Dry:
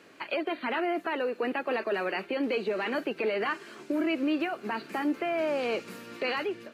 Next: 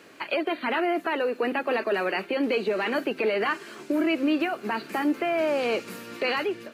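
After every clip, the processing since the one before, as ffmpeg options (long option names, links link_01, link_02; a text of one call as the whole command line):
ffmpeg -i in.wav -af "highshelf=frequency=9400:gain=6,bandreject=frequency=86.05:width_type=h:width=4,bandreject=frequency=172.1:width_type=h:width=4,bandreject=frequency=258.15:width_type=h:width=4,volume=4dB" out.wav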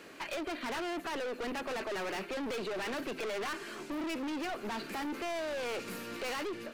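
ffmpeg -i in.wav -af "aeval=exprs='(tanh(56.2*val(0)+0.2)-tanh(0.2))/56.2':channel_layout=same" out.wav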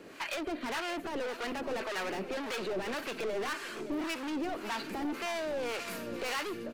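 ffmpeg -i in.wav -filter_complex "[0:a]acrossover=split=720[link_01][link_02];[link_01]aeval=exprs='val(0)*(1-0.7/2+0.7/2*cos(2*PI*1.8*n/s))':channel_layout=same[link_03];[link_02]aeval=exprs='val(0)*(1-0.7/2-0.7/2*cos(2*PI*1.8*n/s))':channel_layout=same[link_04];[link_03][link_04]amix=inputs=2:normalize=0,aecho=1:1:566:0.266,volume=4.5dB" out.wav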